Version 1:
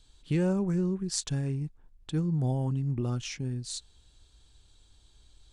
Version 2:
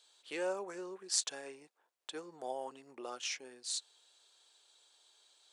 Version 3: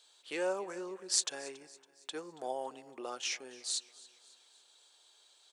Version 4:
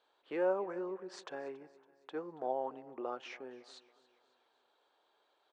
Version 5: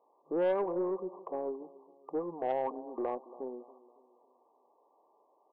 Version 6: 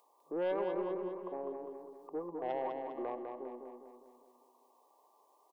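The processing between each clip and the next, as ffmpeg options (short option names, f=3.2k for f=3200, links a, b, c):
-af "highpass=f=490:w=0.5412,highpass=f=490:w=1.3066"
-af "aecho=1:1:279|558|837|1116:0.0944|0.0453|0.0218|0.0104,volume=2.5dB"
-af "lowpass=1.3k,volume=2.5dB"
-filter_complex "[0:a]afftfilt=real='re*between(b*sr/4096,160,1200)':imag='im*between(b*sr/4096,160,1200)':win_size=4096:overlap=0.75,asplit=2[a][b];[b]alimiter=level_in=8dB:limit=-24dB:level=0:latency=1:release=114,volume=-8dB,volume=-2dB[c];[a][c]amix=inputs=2:normalize=0,aeval=exprs='0.1*(cos(1*acos(clip(val(0)/0.1,-1,1)))-cos(1*PI/2))+0.00891*(cos(2*acos(clip(val(0)/0.1,-1,1)))-cos(2*PI/2))+0.00224*(cos(4*acos(clip(val(0)/0.1,-1,1)))-cos(4*PI/2))+0.00794*(cos(5*acos(clip(val(0)/0.1,-1,1)))-cos(5*PI/2))+0.001*(cos(8*acos(clip(val(0)/0.1,-1,1)))-cos(8*PI/2))':c=same"
-filter_complex "[0:a]highshelf=f=2.5k:g=8,acrossover=split=130|1300[a][b][c];[c]acompressor=mode=upward:threshold=-56dB:ratio=2.5[d];[a][b][d]amix=inputs=3:normalize=0,aecho=1:1:202|404|606|808|1010|1212:0.562|0.281|0.141|0.0703|0.0351|0.0176,volume=-5.5dB"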